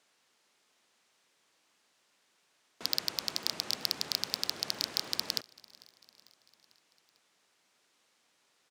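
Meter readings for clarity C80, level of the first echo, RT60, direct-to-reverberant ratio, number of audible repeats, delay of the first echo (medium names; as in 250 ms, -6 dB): no reverb, -24.0 dB, no reverb, no reverb, 3, 447 ms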